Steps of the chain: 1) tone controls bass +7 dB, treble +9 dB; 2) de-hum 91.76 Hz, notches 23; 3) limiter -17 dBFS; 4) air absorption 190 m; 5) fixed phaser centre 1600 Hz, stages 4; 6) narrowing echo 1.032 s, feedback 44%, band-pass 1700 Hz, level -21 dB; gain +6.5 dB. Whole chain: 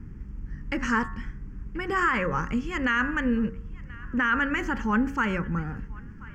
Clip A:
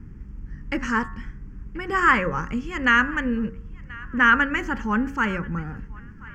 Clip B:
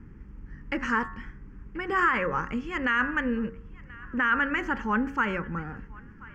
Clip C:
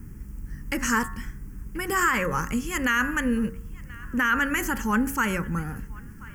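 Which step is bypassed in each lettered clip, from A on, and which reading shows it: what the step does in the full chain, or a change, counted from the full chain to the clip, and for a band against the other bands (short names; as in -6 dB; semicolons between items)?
3, crest factor change +4.5 dB; 1, 125 Hz band -5.5 dB; 4, 4 kHz band +3.5 dB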